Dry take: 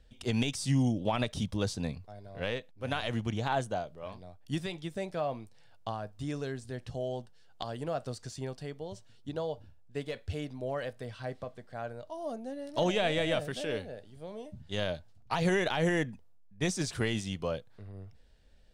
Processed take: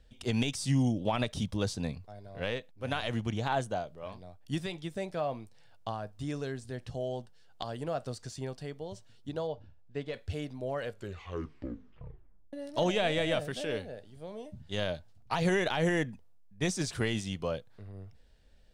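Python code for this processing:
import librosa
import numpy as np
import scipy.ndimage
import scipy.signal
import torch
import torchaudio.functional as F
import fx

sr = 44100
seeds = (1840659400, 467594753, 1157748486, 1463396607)

y = fx.air_absorb(x, sr, metres=100.0, at=(9.47, 10.14))
y = fx.edit(y, sr, fx.tape_stop(start_s=10.78, length_s=1.75), tone=tone)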